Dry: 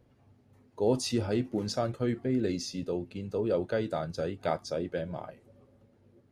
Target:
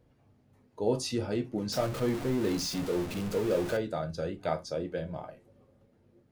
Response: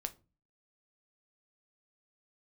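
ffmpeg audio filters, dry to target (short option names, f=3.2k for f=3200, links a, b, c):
-filter_complex "[0:a]asettb=1/sr,asplit=3[a][b][c];[a]atrim=end=1.724[d];[b]atrim=start=1.72:end=3.77,asetpts=PTS-STARTPTS,afade=t=in:d=0.004:c=qsin,afade=t=out:st=2.046:d=0.004:c=qsin,aeval=exprs='val(0)+0.5*0.0266*sgn(val(0))':c=same[e];[c]atrim=start=3.766[f];[d][e]acrossfade=d=0.004:c1=hsin:c2=qsin[g];[g][f]acrossfade=d=0.004:c1=qsin:c2=hsin[h];[1:a]atrim=start_sample=2205,atrim=end_sample=3969[i];[h][i]afir=irnorm=-1:irlink=0"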